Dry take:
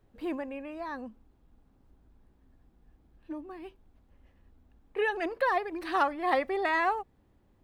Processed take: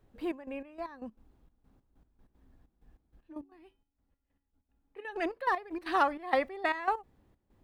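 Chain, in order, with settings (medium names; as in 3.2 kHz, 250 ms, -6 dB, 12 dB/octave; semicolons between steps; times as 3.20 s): trance gate "xxxx..xx..x..x." 192 bpm -12 dB; 3.41–5.05 s: feedback comb 280 Hz, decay 0.36 s, harmonics odd, mix 80%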